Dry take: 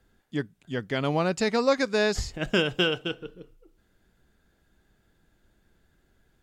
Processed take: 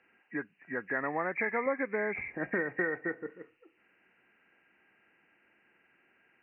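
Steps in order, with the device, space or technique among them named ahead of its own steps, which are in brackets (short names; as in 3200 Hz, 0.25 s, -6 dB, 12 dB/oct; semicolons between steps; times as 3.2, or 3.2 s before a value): hearing aid with frequency lowering (nonlinear frequency compression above 1600 Hz 4:1; compressor 2.5:1, threshold -31 dBFS, peak gain reduction 10 dB; speaker cabinet 400–6600 Hz, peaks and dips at 420 Hz -4 dB, 610 Hz -6 dB, 2900 Hz -5 dB); 1.66–3.3 tilt shelf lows +5.5 dB, about 640 Hz; gain +4 dB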